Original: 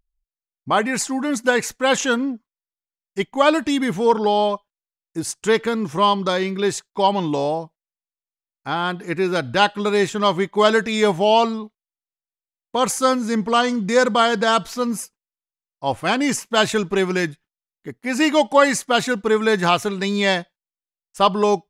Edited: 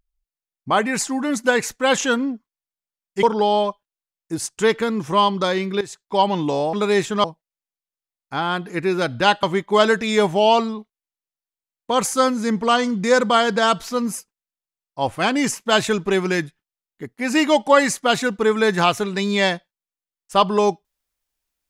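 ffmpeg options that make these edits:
ffmpeg -i in.wav -filter_complex "[0:a]asplit=6[link_01][link_02][link_03][link_04][link_05][link_06];[link_01]atrim=end=3.232[link_07];[link_02]atrim=start=4.078:end=6.66,asetpts=PTS-STARTPTS,afade=type=out:start_time=2.578:duration=0.004:curve=hsin:silence=0.16788[link_08];[link_03]atrim=start=6.66:end=7.582,asetpts=PTS-STARTPTS,afade=type=in:duration=0.38:silence=0.16788[link_09];[link_04]atrim=start=9.768:end=10.282[link_10];[link_05]atrim=start=7.578:end=9.772[link_11];[link_06]atrim=start=10.278[link_12];[link_08][link_09]concat=n=2:v=0:a=1[link_13];[link_07][link_13]acrossfade=duration=0.004:curve1=hsin:curve2=hsin[link_14];[link_14][link_10]acrossfade=duration=0.004:curve1=hsin:curve2=hsin[link_15];[link_15][link_11]acrossfade=duration=0.004:curve1=hsin:curve2=hsin[link_16];[link_16][link_12]acrossfade=duration=0.004:curve1=hsin:curve2=hsin" out.wav

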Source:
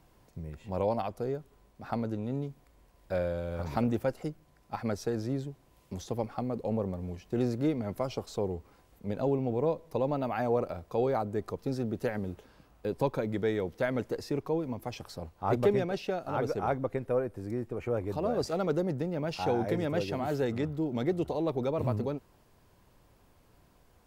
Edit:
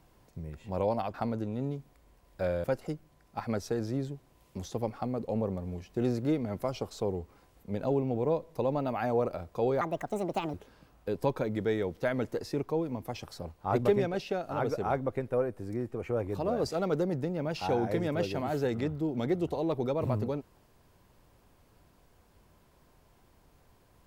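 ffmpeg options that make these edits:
ffmpeg -i in.wav -filter_complex "[0:a]asplit=5[link_01][link_02][link_03][link_04][link_05];[link_01]atrim=end=1.142[link_06];[link_02]atrim=start=1.848:end=3.352[link_07];[link_03]atrim=start=3.998:end=11.174[link_08];[link_04]atrim=start=11.17:end=12.31,asetpts=PTS-STARTPTS,asetrate=69237,aresample=44100[link_09];[link_05]atrim=start=12.306[link_10];[link_06][link_07]acrossfade=duration=0.004:curve1=hsin:curve2=hsin[link_11];[link_11][link_08]acrossfade=duration=0.004:curve1=hsin:curve2=hsin[link_12];[link_12][link_09]acrossfade=duration=0.004:curve1=hsin:curve2=hsin[link_13];[link_13][link_10]acrossfade=duration=0.004:curve1=hsin:curve2=hsin" out.wav

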